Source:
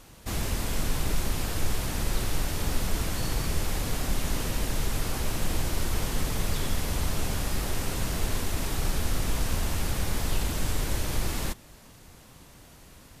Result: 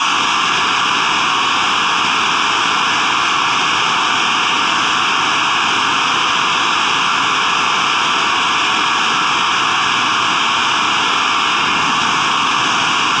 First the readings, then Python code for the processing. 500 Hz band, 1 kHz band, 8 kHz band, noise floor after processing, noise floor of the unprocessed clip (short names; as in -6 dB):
+9.0 dB, +26.5 dB, +11.0 dB, -15 dBFS, -52 dBFS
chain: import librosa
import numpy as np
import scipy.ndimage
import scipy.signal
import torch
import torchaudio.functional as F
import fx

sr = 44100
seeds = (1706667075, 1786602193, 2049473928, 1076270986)

y = fx.tracing_dist(x, sr, depth_ms=0.022)
y = fx.high_shelf(y, sr, hz=2400.0, db=9.5)
y = fx.fold_sine(y, sr, drive_db=16, ceiling_db=-11.5)
y = fx.bandpass_edges(y, sr, low_hz=630.0, high_hz=4100.0)
y = fx.air_absorb(y, sr, metres=110.0)
y = fx.fixed_phaser(y, sr, hz=2900.0, stages=8)
y = fx.room_shoebox(y, sr, seeds[0], volume_m3=690.0, walls='mixed', distance_m=8.7)
y = fx.env_flatten(y, sr, amount_pct=100)
y = y * 10.0 ** (-6.0 / 20.0)